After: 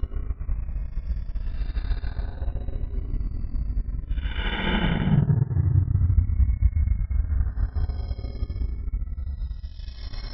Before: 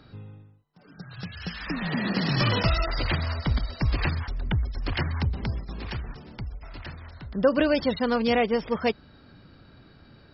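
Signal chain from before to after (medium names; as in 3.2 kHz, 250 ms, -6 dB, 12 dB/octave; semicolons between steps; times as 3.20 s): Paulstretch 24×, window 0.05 s, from 4.32 s; transient shaper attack +6 dB, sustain -10 dB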